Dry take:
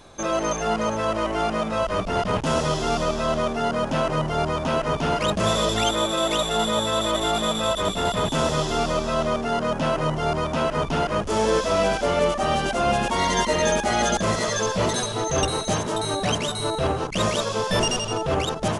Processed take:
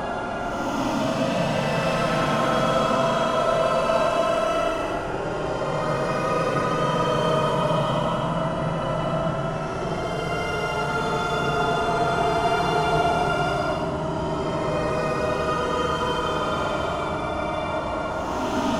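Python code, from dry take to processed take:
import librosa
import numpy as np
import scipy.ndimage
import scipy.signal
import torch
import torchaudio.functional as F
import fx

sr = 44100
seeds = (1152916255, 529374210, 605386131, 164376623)

y = fx.tracing_dist(x, sr, depth_ms=0.072)
y = fx.low_shelf(y, sr, hz=200.0, db=-8.5)
y = fx.echo_banded(y, sr, ms=210, feedback_pct=67, hz=1200.0, wet_db=-7)
y = fx.paulstretch(y, sr, seeds[0], factor=24.0, window_s=0.05, from_s=3.88)
y = fx.low_shelf(y, sr, hz=420.0, db=3.5)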